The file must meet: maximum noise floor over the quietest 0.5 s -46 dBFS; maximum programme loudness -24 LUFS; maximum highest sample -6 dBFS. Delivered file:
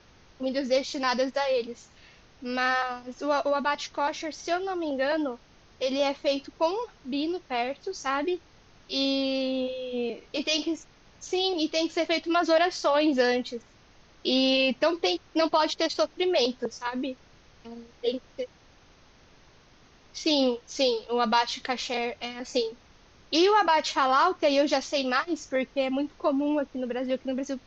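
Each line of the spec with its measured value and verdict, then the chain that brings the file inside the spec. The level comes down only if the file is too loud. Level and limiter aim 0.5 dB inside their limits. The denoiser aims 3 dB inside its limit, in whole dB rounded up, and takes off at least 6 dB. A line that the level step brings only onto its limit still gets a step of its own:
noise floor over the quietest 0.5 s -57 dBFS: pass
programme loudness -27.0 LUFS: pass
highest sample -10.5 dBFS: pass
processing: none needed

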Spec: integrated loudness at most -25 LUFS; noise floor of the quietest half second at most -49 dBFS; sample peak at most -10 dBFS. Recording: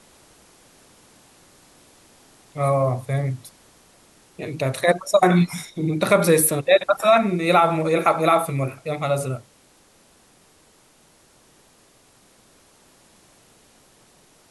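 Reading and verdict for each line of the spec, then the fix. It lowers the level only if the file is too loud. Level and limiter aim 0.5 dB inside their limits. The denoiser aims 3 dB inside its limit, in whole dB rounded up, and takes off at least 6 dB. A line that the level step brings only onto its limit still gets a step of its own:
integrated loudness -20.0 LUFS: fail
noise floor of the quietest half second -56 dBFS: pass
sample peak -5.5 dBFS: fail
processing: trim -5.5 dB

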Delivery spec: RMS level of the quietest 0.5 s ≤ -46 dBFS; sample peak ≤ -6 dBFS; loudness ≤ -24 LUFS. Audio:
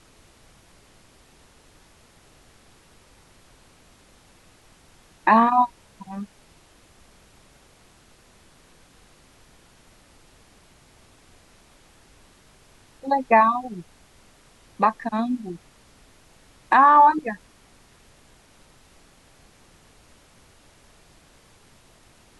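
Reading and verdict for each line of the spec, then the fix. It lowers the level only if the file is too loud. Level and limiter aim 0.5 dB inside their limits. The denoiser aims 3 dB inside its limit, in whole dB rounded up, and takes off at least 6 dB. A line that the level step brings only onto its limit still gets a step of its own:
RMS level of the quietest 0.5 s -55 dBFS: pass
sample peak -4.5 dBFS: fail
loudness -19.5 LUFS: fail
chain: trim -5 dB

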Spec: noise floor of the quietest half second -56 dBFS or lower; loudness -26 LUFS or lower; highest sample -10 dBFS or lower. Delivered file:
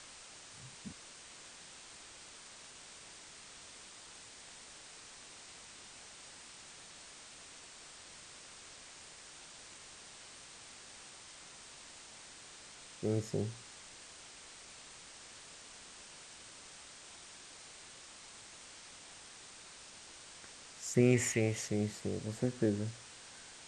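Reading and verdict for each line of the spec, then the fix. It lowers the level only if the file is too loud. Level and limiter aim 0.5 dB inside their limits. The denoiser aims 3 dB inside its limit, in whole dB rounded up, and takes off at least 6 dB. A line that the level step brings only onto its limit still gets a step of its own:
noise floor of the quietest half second -54 dBFS: fail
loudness -42.5 LUFS: pass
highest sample -15.0 dBFS: pass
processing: noise reduction 6 dB, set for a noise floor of -54 dBFS

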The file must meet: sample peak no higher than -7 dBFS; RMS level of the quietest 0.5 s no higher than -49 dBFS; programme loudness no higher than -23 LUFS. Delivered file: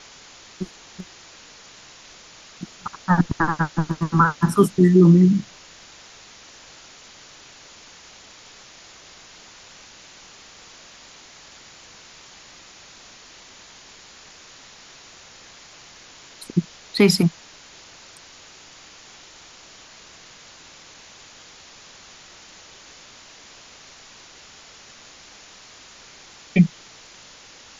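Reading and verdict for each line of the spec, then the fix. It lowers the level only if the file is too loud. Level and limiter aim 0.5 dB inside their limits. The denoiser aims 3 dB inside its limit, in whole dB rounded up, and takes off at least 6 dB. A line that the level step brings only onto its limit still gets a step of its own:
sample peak -4.5 dBFS: fail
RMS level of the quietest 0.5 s -46 dBFS: fail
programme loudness -19.0 LUFS: fail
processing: trim -4.5 dB

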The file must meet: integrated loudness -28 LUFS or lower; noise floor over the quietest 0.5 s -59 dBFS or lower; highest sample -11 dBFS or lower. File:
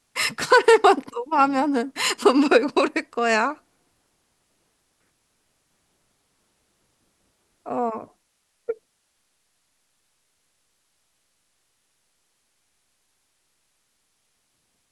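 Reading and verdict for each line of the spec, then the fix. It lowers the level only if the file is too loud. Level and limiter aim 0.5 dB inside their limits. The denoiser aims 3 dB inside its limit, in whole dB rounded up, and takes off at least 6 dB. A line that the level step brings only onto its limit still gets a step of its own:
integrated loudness -20.5 LUFS: fail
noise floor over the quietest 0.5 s -71 dBFS: pass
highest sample -4.5 dBFS: fail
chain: trim -8 dB

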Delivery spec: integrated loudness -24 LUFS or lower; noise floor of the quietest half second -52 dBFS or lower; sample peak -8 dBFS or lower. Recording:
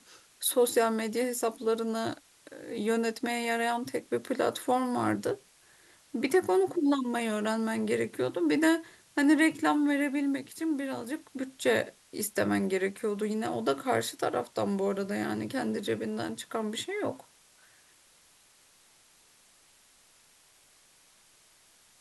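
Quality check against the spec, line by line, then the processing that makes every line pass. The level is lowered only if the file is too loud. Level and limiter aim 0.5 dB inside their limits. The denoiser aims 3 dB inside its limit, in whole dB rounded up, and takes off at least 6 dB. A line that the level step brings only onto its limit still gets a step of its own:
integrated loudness -30.0 LUFS: pass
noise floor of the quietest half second -62 dBFS: pass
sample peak -12.0 dBFS: pass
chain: none needed

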